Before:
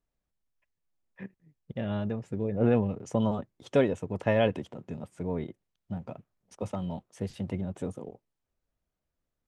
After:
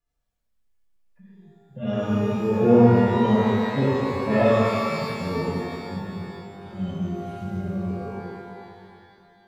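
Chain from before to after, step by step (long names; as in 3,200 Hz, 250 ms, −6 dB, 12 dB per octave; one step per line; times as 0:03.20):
harmonic-percussive split with one part muted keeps harmonic
reverb with rising layers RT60 2.4 s, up +12 semitones, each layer −8 dB, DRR −9 dB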